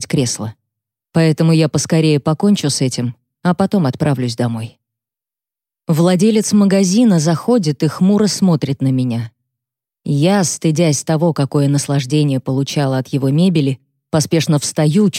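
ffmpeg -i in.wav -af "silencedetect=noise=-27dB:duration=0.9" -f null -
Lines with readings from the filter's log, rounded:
silence_start: 4.68
silence_end: 5.89 | silence_duration: 1.21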